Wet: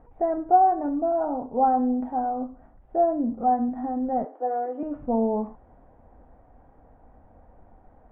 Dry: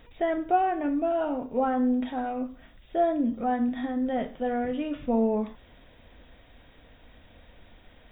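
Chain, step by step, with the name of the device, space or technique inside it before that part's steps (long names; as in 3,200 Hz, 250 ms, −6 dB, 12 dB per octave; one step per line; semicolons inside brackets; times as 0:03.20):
0:04.25–0:04.83: Butterworth high-pass 270 Hz 96 dB per octave
under water (low-pass filter 1,200 Hz 24 dB per octave; parametric band 790 Hz +9.5 dB 0.28 octaves)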